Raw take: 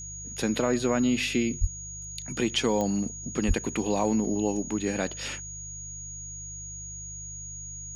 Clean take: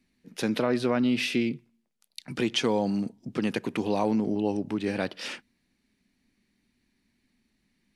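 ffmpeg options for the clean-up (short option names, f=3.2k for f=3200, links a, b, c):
-filter_complex "[0:a]adeclick=t=4,bandreject=f=50.3:t=h:w=4,bandreject=f=100.6:t=h:w=4,bandreject=f=150.9:t=h:w=4,bandreject=f=6.7k:w=30,asplit=3[a][b][c];[a]afade=t=out:st=1.6:d=0.02[d];[b]highpass=f=140:w=0.5412,highpass=f=140:w=1.3066,afade=t=in:st=1.6:d=0.02,afade=t=out:st=1.72:d=0.02[e];[c]afade=t=in:st=1.72:d=0.02[f];[d][e][f]amix=inputs=3:normalize=0,asplit=3[g][h][i];[g]afade=t=out:st=3.47:d=0.02[j];[h]highpass=f=140:w=0.5412,highpass=f=140:w=1.3066,afade=t=in:st=3.47:d=0.02,afade=t=out:st=3.59:d=0.02[k];[i]afade=t=in:st=3.59:d=0.02[l];[j][k][l]amix=inputs=3:normalize=0"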